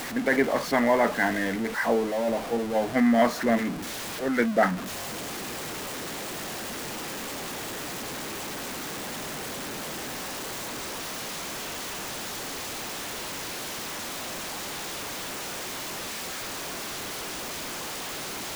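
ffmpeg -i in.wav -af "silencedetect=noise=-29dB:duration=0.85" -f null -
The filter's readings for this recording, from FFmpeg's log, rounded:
silence_start: 4.76
silence_end: 18.55 | silence_duration: 13.79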